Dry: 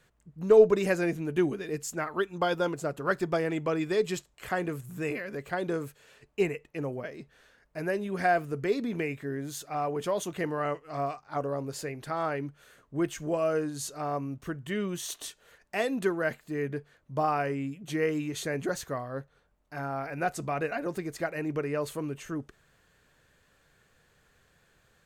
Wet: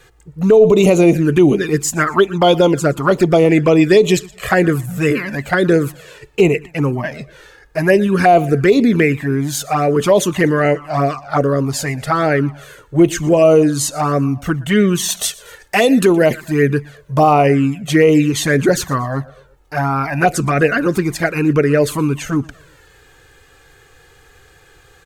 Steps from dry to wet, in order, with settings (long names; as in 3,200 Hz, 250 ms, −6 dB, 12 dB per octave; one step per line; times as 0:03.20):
repeating echo 119 ms, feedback 41%, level −22 dB
flanger swept by the level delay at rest 2.5 ms, full sweep at −24 dBFS
0:15.17–0:17.33: high-shelf EQ 4,900 Hz +5 dB
boost into a limiter +21.5 dB
level −1 dB